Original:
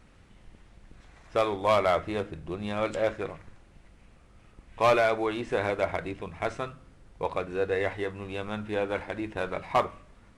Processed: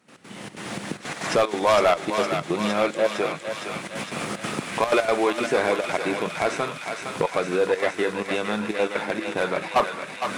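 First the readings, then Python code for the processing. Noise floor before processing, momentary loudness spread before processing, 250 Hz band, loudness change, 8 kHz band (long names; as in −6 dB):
−57 dBFS, 12 LU, +7.0 dB, +4.5 dB, can't be measured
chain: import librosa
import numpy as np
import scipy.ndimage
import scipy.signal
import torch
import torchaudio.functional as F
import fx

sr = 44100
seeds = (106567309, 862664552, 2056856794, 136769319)

p1 = fx.recorder_agc(x, sr, target_db=-23.0, rise_db_per_s=37.0, max_gain_db=30)
p2 = scipy.signal.sosfilt(scipy.signal.butter(4, 160.0, 'highpass', fs=sr, output='sos'), p1)
p3 = fx.high_shelf(p2, sr, hz=5900.0, db=6.5)
p4 = fx.fold_sine(p3, sr, drive_db=9, ceiling_db=-10.0)
p5 = p3 + F.gain(torch.from_numpy(p4), -10.0).numpy()
p6 = fx.step_gate(p5, sr, bpm=186, pattern='.x.xxx.xxxxx', floor_db=-12.0, edge_ms=4.5)
y = p6 + fx.echo_thinned(p6, sr, ms=460, feedback_pct=81, hz=880.0, wet_db=-4.5, dry=0)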